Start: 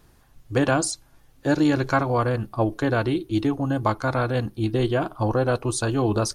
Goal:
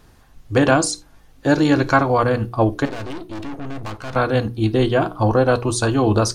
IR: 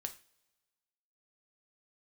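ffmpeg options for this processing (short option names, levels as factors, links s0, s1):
-filter_complex "[0:a]asettb=1/sr,asplit=3[s0][s1][s2];[s0]atrim=end=2.854[s3];[s1]atrim=start=2.85:end=4.16,asetpts=PTS-STARTPTS,afade=t=in:d=0.004:c=qsin,afade=t=out:st=1.306:d=0.004:c=qsin,aeval=exprs='(tanh(50.1*val(0)+0.65)-tanh(0.65))/50.1':c=same[s4];[s2]atrim=start=4.156[s5];[s3][s4]acrossfade=d=0.004:c1=hsin:c2=qsin[s6];[s6][s5]acrossfade=d=0.004:c1=qsin:c2=hsin,bandreject=f=60:t=h:w=6,bandreject=f=120:t=h:w=6,bandreject=f=180:t=h:w=6,bandreject=f=240:t=h:w=6,bandreject=f=300:t=h:w=6,bandreject=f=360:t=h:w=6,bandreject=f=420:t=h:w=6,bandreject=f=480:t=h:w=6,asplit=2[s7][s8];[1:a]atrim=start_sample=2205,afade=t=out:st=0.14:d=0.01,atrim=end_sample=6615,lowpass=8900[s9];[s8][s9]afir=irnorm=-1:irlink=0,volume=0.841[s10];[s7][s10]amix=inputs=2:normalize=0,volume=1.26"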